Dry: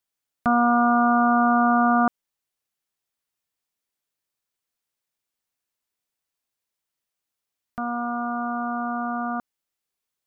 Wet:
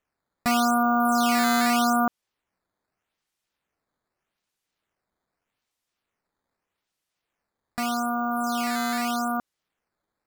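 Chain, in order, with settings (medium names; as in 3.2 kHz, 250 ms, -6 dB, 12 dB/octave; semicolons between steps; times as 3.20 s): in parallel at +2 dB: peak limiter -20.5 dBFS, peak gain reduction 9.5 dB; on the sum: decimation with a swept rate 9×, swing 160% 0.82 Hz; trim -6 dB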